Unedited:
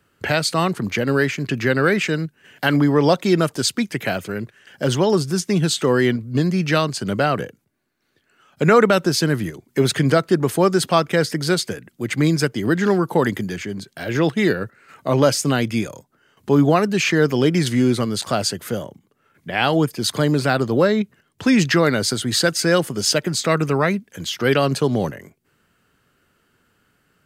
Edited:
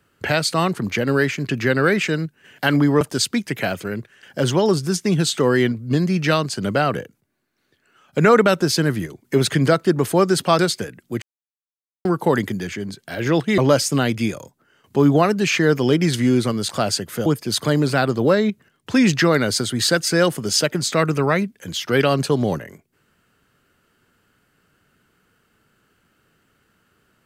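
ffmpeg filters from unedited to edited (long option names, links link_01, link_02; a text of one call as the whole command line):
ffmpeg -i in.wav -filter_complex "[0:a]asplit=7[link_01][link_02][link_03][link_04][link_05][link_06][link_07];[link_01]atrim=end=3.012[link_08];[link_02]atrim=start=3.448:end=11.032[link_09];[link_03]atrim=start=11.478:end=12.11,asetpts=PTS-STARTPTS,afade=type=out:start_time=0.628:duration=0.004:curve=hsin[link_10];[link_04]atrim=start=12.11:end=12.94,asetpts=PTS-STARTPTS,volume=0[link_11];[link_05]atrim=start=12.94:end=14.472,asetpts=PTS-STARTPTS,afade=type=in:duration=0.004:curve=hsin[link_12];[link_06]atrim=start=15.108:end=18.792[link_13];[link_07]atrim=start=19.778[link_14];[link_08][link_09]acrossfade=duration=0.004:curve1=hsin:curve2=hsin[link_15];[link_10][link_11][link_12]concat=n=3:v=0:a=1[link_16];[link_15][link_16]acrossfade=duration=0.004:curve1=hsin:curve2=hsin[link_17];[link_17][link_13]acrossfade=duration=0.004:curve1=hsin:curve2=hsin[link_18];[link_18][link_14]acrossfade=duration=0.004:curve1=hsin:curve2=hsin" out.wav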